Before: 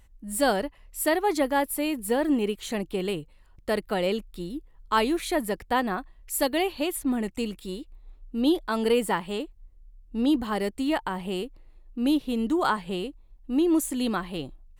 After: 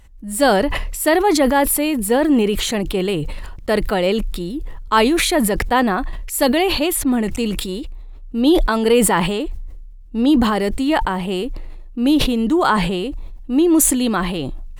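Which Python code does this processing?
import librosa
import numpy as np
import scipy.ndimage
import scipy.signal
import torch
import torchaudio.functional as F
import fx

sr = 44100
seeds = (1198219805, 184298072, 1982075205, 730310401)

y = fx.high_shelf(x, sr, hz=11000.0, db=-5.0)
y = fx.sustainer(y, sr, db_per_s=31.0)
y = F.gain(torch.from_numpy(y), 8.0).numpy()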